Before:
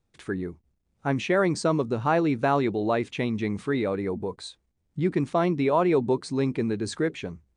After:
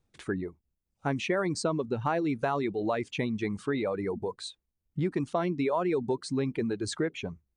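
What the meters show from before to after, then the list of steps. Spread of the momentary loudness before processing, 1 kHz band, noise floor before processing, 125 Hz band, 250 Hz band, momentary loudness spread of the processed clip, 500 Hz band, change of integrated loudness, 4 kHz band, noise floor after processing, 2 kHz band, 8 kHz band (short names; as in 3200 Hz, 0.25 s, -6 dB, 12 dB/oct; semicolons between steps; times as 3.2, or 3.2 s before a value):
11 LU, -5.5 dB, -74 dBFS, -5.0 dB, -5.0 dB, 7 LU, -5.0 dB, -5.0 dB, -1.5 dB, -83 dBFS, -4.5 dB, -1.0 dB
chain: reverb removal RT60 1 s; compressor 3:1, threshold -26 dBFS, peak gain reduction 6.5 dB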